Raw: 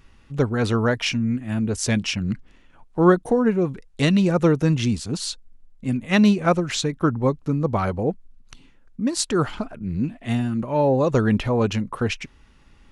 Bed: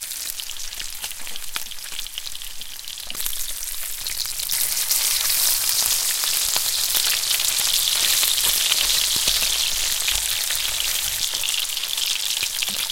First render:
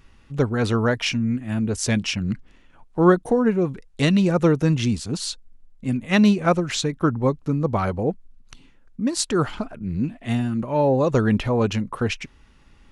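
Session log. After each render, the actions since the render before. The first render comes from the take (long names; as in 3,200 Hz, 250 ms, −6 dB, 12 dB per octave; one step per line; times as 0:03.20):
no processing that can be heard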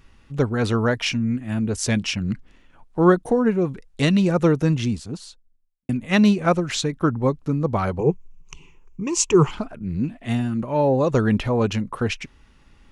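0:04.54–0:05.89: fade out and dull
0:07.99–0:09.51: EQ curve with evenly spaced ripples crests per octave 0.74, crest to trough 17 dB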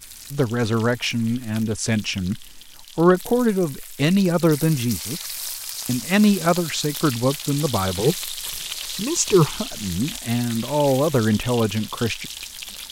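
mix in bed −11 dB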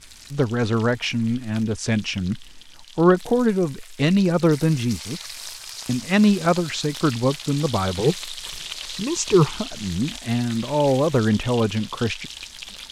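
high-frequency loss of the air 60 metres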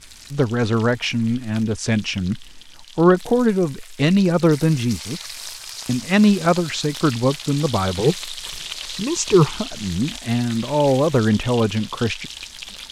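level +2 dB
brickwall limiter −3 dBFS, peak gain reduction 1 dB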